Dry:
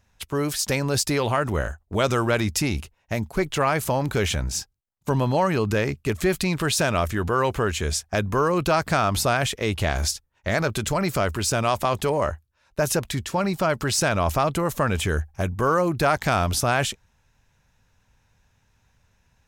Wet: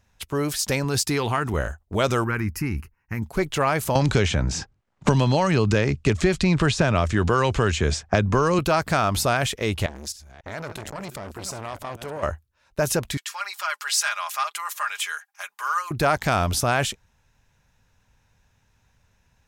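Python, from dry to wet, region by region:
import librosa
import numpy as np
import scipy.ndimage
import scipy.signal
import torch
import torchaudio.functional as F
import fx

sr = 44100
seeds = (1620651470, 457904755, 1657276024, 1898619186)

y = fx.chain(x, sr, fx.highpass(hz=53.0, slope=12),
    fx.peak_eq(hz=580.0, db=-14.5, octaves=0.21), at=(0.84, 1.54))
y = fx.chain(y, sr, fx.peak_eq(hz=7600.0, db=-12.0, octaves=0.9),
    fx.fixed_phaser(hz=1500.0, stages=4), at=(2.24, 3.22))
y = fx.chain(y, sr, fx.lowpass(hz=7700.0, slope=24),
    fx.low_shelf(hz=190.0, db=5.0),
    fx.band_squash(depth_pct=100), at=(3.95, 8.59))
y = fx.chain(y, sr, fx.reverse_delay(ms=275, wet_db=-11),
    fx.level_steps(step_db=15),
    fx.transformer_sat(knee_hz=1100.0), at=(9.86, 12.23))
y = fx.chain(y, sr, fx.highpass(hz=1100.0, slope=24),
    fx.comb(ms=4.9, depth=0.64), at=(13.17, 15.91))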